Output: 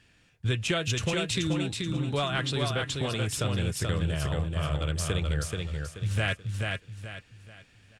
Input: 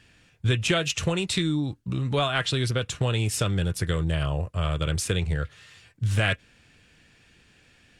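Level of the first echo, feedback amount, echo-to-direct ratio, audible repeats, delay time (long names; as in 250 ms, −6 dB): −3.5 dB, 34%, −3.0 dB, 4, 431 ms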